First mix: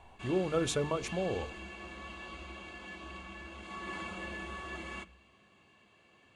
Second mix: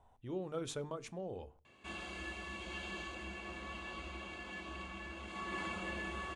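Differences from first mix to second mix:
speech −9.5 dB
background: entry +1.65 s

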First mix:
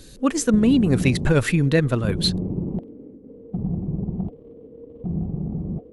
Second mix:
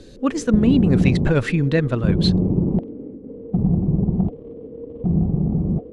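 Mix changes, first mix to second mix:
background +7.5 dB
master: add high-frequency loss of the air 90 metres

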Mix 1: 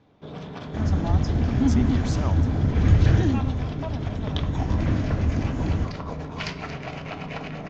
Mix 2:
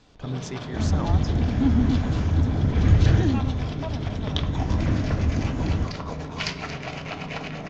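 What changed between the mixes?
speech: entry −1.25 s
first sound: add high-shelf EQ 3,100 Hz +8 dB

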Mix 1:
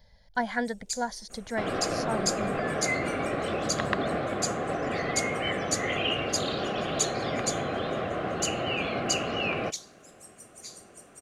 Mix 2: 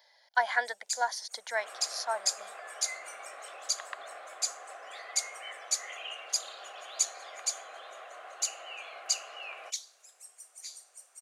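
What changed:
speech +3.5 dB
second sound −11.5 dB
master: add high-pass filter 680 Hz 24 dB per octave

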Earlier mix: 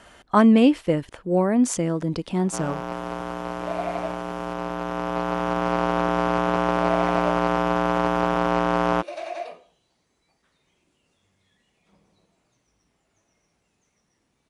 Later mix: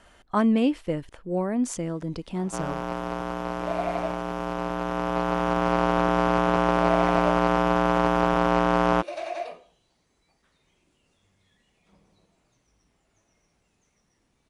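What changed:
speech −6.5 dB
master: remove high-pass filter 77 Hz 6 dB per octave

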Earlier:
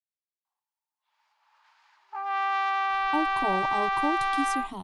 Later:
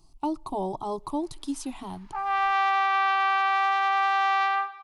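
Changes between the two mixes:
speech: entry −2.90 s
background: send on

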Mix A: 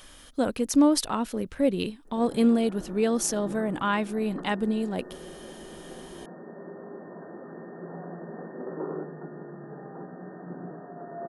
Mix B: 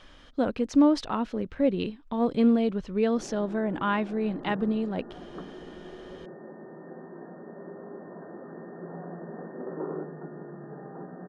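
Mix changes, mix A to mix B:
background: entry +1.00 s
master: add high-frequency loss of the air 180 metres

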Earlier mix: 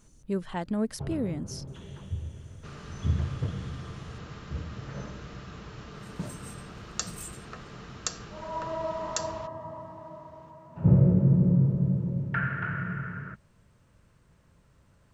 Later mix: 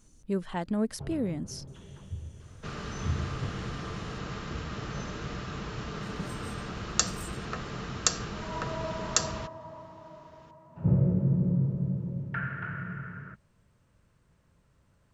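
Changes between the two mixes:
first sound −4.5 dB
second sound +7.0 dB

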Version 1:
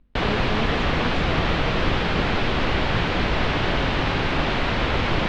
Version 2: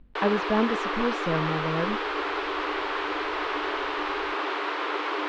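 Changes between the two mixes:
speech +5.5 dB
background: add Chebyshev high-pass with heavy ripple 290 Hz, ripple 9 dB

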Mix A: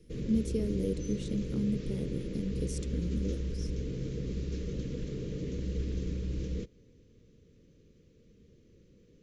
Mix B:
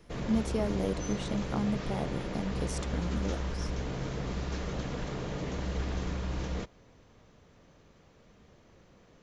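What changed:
background: add high-shelf EQ 5,200 Hz +5 dB
master: remove drawn EQ curve 480 Hz 0 dB, 740 Hz −29 dB, 2,400 Hz −8 dB, 11,000 Hz 0 dB

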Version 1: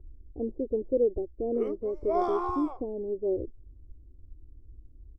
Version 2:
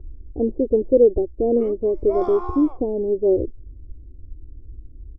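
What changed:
speech +11.0 dB
master: add high-shelf EQ 8,700 Hz −7.5 dB

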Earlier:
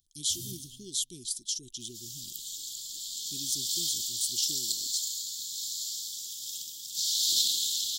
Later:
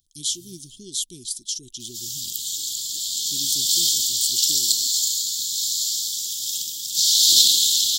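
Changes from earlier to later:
speech +4.5 dB
first sound −9.0 dB
second sound +11.5 dB

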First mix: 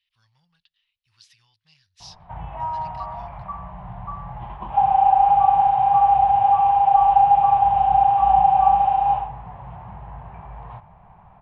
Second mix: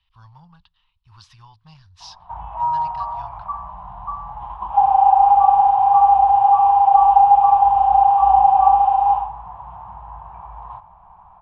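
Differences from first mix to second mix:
speech: remove first-order pre-emphasis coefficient 0.97
master: add graphic EQ with 10 bands 125 Hz −9 dB, 250 Hz −8 dB, 500 Hz −9 dB, 1,000 Hz +12 dB, 2,000 Hz −11 dB

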